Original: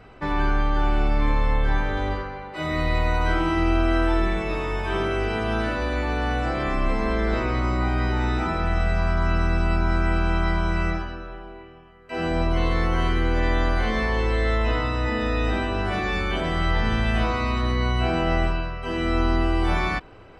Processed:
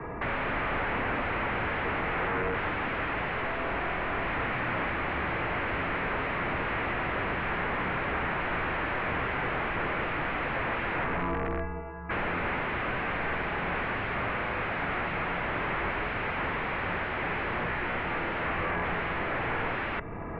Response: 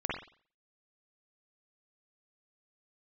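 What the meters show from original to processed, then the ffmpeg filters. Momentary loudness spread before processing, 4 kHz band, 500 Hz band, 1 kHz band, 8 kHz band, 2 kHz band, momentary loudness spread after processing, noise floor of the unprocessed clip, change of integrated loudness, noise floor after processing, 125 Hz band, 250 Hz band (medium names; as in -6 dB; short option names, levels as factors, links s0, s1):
5 LU, -7.5 dB, -6.5 dB, -3.0 dB, no reading, -0.5 dB, 1 LU, -45 dBFS, -6.0 dB, -35 dBFS, -12.0 dB, -10.0 dB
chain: -filter_complex "[0:a]highpass=f=50:w=0.5412,highpass=f=50:w=1.3066,acrossover=split=150|710|1800[s0][s1][s2][s3];[s2]acompressor=threshold=0.00631:ratio=6[s4];[s0][s1][s4][s3]amix=inputs=4:normalize=0,asplit=2[s5][s6];[s6]highpass=f=720:p=1,volume=15.8,asoftclip=type=tanh:threshold=0.237[s7];[s5][s7]amix=inputs=2:normalize=0,lowpass=f=1200:p=1,volume=0.501,aeval=exprs='(mod(13.3*val(0)+1,2)-1)/13.3':c=same,highpass=f=200:t=q:w=0.5412,highpass=f=200:t=q:w=1.307,lowpass=f=2600:t=q:w=0.5176,lowpass=f=2600:t=q:w=0.7071,lowpass=f=2600:t=q:w=1.932,afreqshift=-320"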